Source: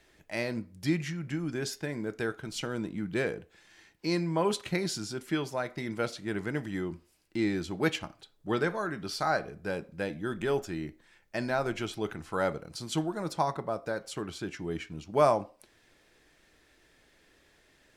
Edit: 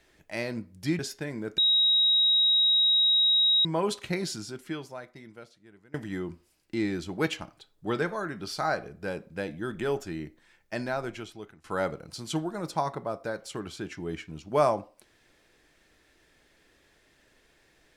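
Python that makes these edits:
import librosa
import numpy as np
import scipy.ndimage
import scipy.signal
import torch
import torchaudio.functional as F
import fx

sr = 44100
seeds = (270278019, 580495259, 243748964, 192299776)

y = fx.edit(x, sr, fx.cut(start_s=0.99, length_s=0.62),
    fx.bleep(start_s=2.2, length_s=2.07, hz=3810.0, db=-19.0),
    fx.fade_out_to(start_s=4.93, length_s=1.63, curve='qua', floor_db=-24.0),
    fx.fade_out_to(start_s=11.39, length_s=0.87, floor_db=-21.0), tone=tone)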